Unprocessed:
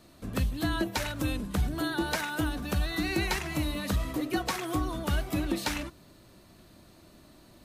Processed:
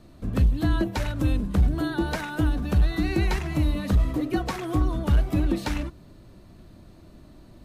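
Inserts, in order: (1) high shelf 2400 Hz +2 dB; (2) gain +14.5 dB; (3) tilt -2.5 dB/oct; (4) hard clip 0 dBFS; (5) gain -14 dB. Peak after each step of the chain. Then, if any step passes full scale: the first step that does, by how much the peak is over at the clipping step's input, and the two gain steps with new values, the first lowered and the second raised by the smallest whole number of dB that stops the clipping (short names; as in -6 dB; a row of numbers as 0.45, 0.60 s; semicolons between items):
-17.5, -3.0, +5.5, 0.0, -14.0 dBFS; step 3, 5.5 dB; step 2 +8.5 dB, step 5 -8 dB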